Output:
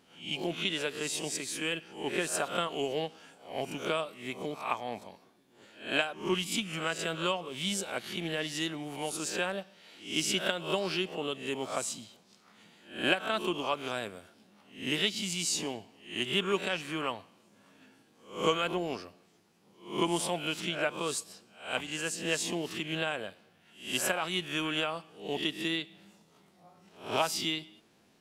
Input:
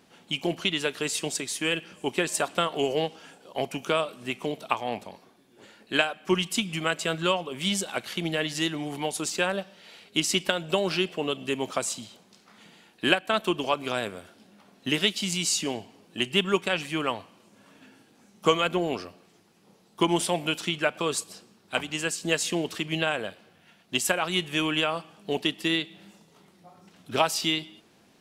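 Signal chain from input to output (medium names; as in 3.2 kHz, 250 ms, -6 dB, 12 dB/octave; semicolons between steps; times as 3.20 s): reverse spectral sustain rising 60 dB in 0.42 s; 4.21–5.07 s: band-stop 2.8 kHz, Q 7; trim -7 dB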